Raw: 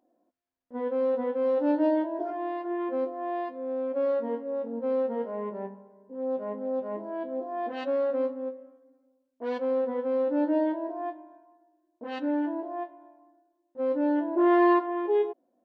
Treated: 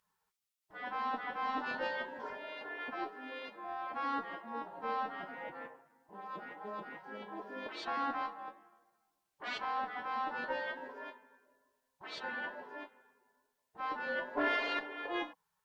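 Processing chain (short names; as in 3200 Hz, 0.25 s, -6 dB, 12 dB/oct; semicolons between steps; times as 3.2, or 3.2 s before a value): spectral gate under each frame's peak -20 dB weak; added harmonics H 5 -6 dB, 7 -15 dB, 8 -17 dB, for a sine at -13.5 dBFS; gain +1 dB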